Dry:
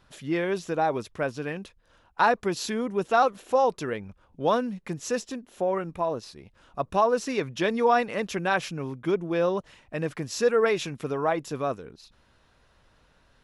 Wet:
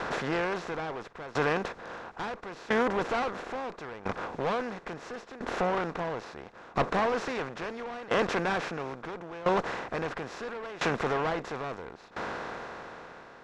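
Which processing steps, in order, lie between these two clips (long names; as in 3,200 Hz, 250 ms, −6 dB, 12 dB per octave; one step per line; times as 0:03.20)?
compressor on every frequency bin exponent 0.4
parametric band 1,700 Hz +4 dB 0.91 octaves
tube saturation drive 18 dB, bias 0.55
high-frequency loss of the air 85 metres
tremolo with a ramp in dB decaying 0.74 Hz, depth 19 dB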